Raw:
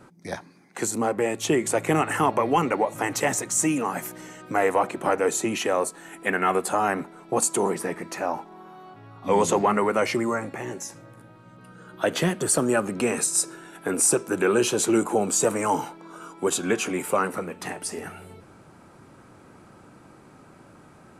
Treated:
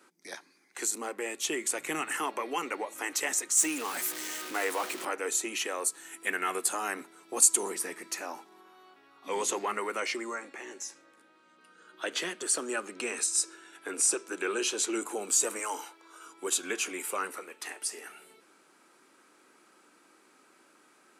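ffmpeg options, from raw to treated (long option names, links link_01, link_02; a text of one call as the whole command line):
ffmpeg -i in.wav -filter_complex "[0:a]asettb=1/sr,asplit=3[link_01][link_02][link_03];[link_01]atrim=end=1.254[link_04];[link_02]atrim=start=1.25:end=2.18,asetpts=PTS-STARTPTS,afade=type=in:duration=0.004:curve=qsin,afade=type=out:start_time=0.926:duration=0.004:curve=qsin,asubboost=boost=10.5:cutoff=210[link_05];[link_03]atrim=start=2.176[link_06];[link_04][link_05]acrossfade=duration=0.004:curve1=hsin:curve2=qsin[link_07];[link_07][link_06]acrossfade=duration=0.004:curve1=qsin:curve2=hsin,asettb=1/sr,asplit=3[link_08][link_09][link_10];[link_08]atrim=end=3.574[link_11];[link_09]atrim=start=3.57:end=5.05,asetpts=PTS-STARTPTS,afade=type=in:duration=0.004:curve=qsin,afade=type=out:start_time=1.476:duration=0.004:curve=qsin,aeval=exprs='val(0)+0.5*0.0398*sgn(val(0))':channel_layout=same[link_12];[link_10]atrim=start=5.046[link_13];[link_11][link_12]acrossfade=duration=0.004:curve1=hsin:curve2=qsin[link_14];[link_14][link_13]acrossfade=duration=0.004:curve1=qsin:curve2=hsin,asettb=1/sr,asplit=3[link_15][link_16][link_17];[link_15]atrim=end=5.844[link_18];[link_16]atrim=start=5.84:end=8.61,asetpts=PTS-STARTPTS,afade=type=in:duration=0.004:curve=qsin,afade=type=out:start_time=2.766:duration=0.004:curve=qsin,bass=frequency=250:gain=5,treble=frequency=4000:gain=5[link_19];[link_17]atrim=start=8.606[link_20];[link_18][link_19]acrossfade=duration=0.004:curve1=hsin:curve2=qsin[link_21];[link_21][link_20]acrossfade=duration=0.004:curve1=qsin:curve2=hsin,asettb=1/sr,asplit=3[link_22][link_23][link_24];[link_22]atrim=end=10.004[link_25];[link_23]atrim=start=10:end=15.02,asetpts=PTS-STARTPTS,afade=type=in:duration=0.004:curve=qsin,afade=type=out:start_time=5.016:duration=0.004:curve=qsin,highpass=130,lowpass=7900[link_26];[link_24]atrim=start=15.016[link_27];[link_25][link_26]acrossfade=duration=0.004:curve1=hsin:curve2=qsin[link_28];[link_28][link_27]acrossfade=duration=0.004:curve1=qsin:curve2=hsin,asettb=1/sr,asplit=3[link_29][link_30][link_31];[link_29]atrim=end=15.594[link_32];[link_30]atrim=start=15.59:end=16.26,asetpts=PTS-STARTPTS,afade=type=in:duration=0.004:curve=qsin,afade=type=out:start_time=0.666:duration=0.004:curve=qsin,highpass=370[link_33];[link_31]atrim=start=16.256[link_34];[link_32][link_33]acrossfade=duration=0.004:curve1=hsin:curve2=qsin[link_35];[link_35][link_34]acrossfade=duration=0.004:curve1=qsin:curve2=hsin,asettb=1/sr,asplit=3[link_36][link_37][link_38];[link_36]atrim=end=17.314[link_39];[link_37]atrim=start=17.31:end=18.09,asetpts=PTS-STARTPTS,afade=type=in:duration=0.004:curve=qsin,afade=type=out:start_time=0.776:duration=0.004:curve=qsin,highpass=300[link_40];[link_38]atrim=start=18.086[link_41];[link_39][link_40]acrossfade=duration=0.004:curve1=hsin:curve2=qsin[link_42];[link_42][link_41]acrossfade=duration=0.004:curve1=qsin:curve2=hsin,highpass=frequency=340:width=0.5412,highpass=frequency=340:width=1.3066,equalizer=frequency=640:width=0.65:gain=-13.5,volume=-1dB" out.wav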